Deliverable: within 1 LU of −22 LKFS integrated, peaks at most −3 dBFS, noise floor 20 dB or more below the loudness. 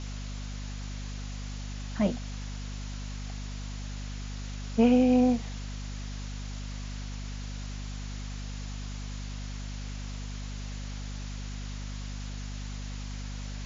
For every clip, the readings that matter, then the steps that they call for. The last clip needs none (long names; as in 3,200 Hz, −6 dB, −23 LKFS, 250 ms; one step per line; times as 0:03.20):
mains hum 50 Hz; hum harmonics up to 250 Hz; level of the hum −34 dBFS; background noise floor −37 dBFS; target noise floor −54 dBFS; integrated loudness −33.5 LKFS; sample peak −10.5 dBFS; target loudness −22.0 LKFS
→ hum removal 50 Hz, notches 5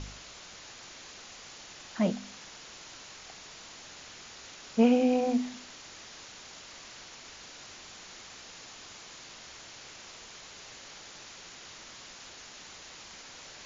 mains hum none found; background noise floor −49 dBFS; target noise floor −57 dBFS
→ noise reduction from a noise print 8 dB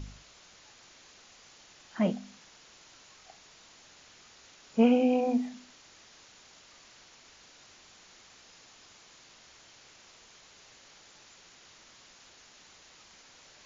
background noise floor −57 dBFS; integrated loudness −28.0 LKFS; sample peak −11.5 dBFS; target loudness −22.0 LKFS
→ level +6 dB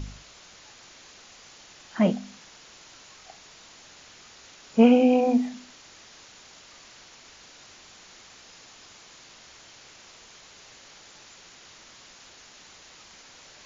integrated loudness −22.0 LKFS; sample peak −5.5 dBFS; background noise floor −51 dBFS